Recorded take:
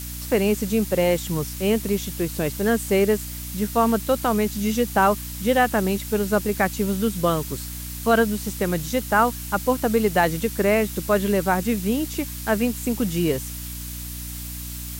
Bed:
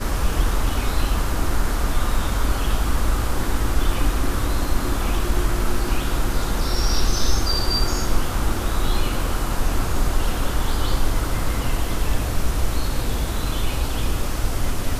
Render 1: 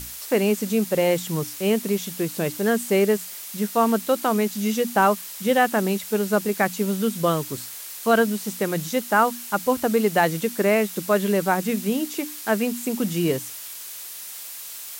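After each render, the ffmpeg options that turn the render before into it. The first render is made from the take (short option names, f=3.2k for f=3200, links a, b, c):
-af "bandreject=f=60:t=h:w=6,bandreject=f=120:t=h:w=6,bandreject=f=180:t=h:w=6,bandreject=f=240:t=h:w=6,bandreject=f=300:t=h:w=6"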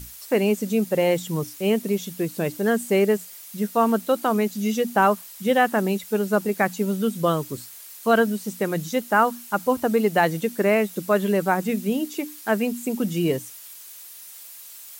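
-af "afftdn=nr=8:nf=-37"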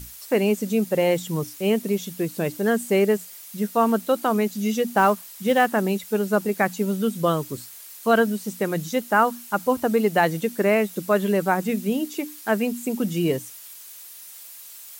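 -filter_complex "[0:a]asettb=1/sr,asplit=3[a][b][c];[a]atrim=end=4.904[d];[b]atrim=start=4.9:end=5.66,asetpts=PTS-STARTPTS,afade=t=in:d=0.004:c=qsin,afade=t=out:st=0.756:d=0.004:c=qsin,acrusher=bits=6:mode=log:mix=0:aa=0.000001[e];[c]atrim=start=5.656[f];[d][e]acrossfade=d=0.004:c1=hsin:c2=qsin[g];[g][f]acrossfade=d=0.004:c1=qsin:c2=hsin"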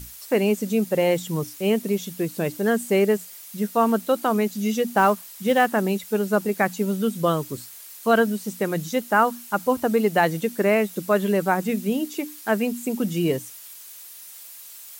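-af anull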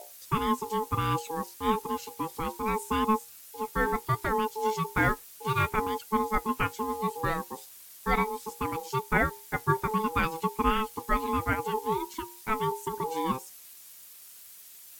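-af "flanger=delay=4.2:depth=3.8:regen=60:speed=0.67:shape=sinusoidal,aeval=exprs='val(0)*sin(2*PI*650*n/s)':c=same"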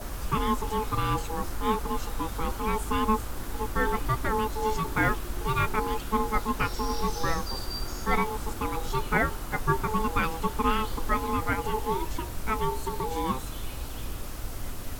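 -filter_complex "[1:a]volume=-13dB[a];[0:a][a]amix=inputs=2:normalize=0"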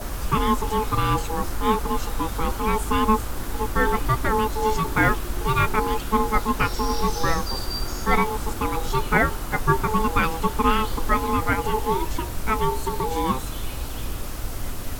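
-af "volume=5.5dB"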